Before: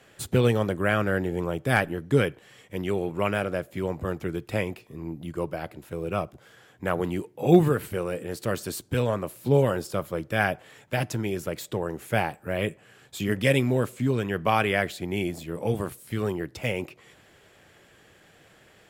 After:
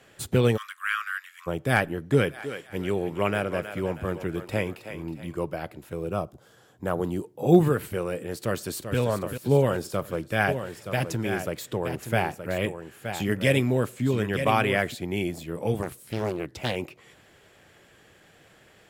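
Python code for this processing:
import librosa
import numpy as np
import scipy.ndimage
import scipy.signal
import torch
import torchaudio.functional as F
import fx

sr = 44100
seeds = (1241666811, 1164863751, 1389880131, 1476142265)

y = fx.steep_highpass(x, sr, hz=1100.0, slope=96, at=(0.56, 1.46), fade=0.02)
y = fx.echo_thinned(y, sr, ms=319, feedback_pct=41, hz=440.0, wet_db=-9.0, at=(2.12, 5.34), fade=0.02)
y = fx.peak_eq(y, sr, hz=2200.0, db=-10.5, octaves=0.94, at=(6.07, 7.61))
y = fx.echo_throw(y, sr, start_s=8.36, length_s=0.62, ms=390, feedback_pct=60, wet_db=-8.5)
y = fx.echo_single(y, sr, ms=922, db=-8.5, at=(10.47, 14.93), fade=0.02)
y = fx.doppler_dist(y, sr, depth_ms=0.59, at=(15.82, 16.76))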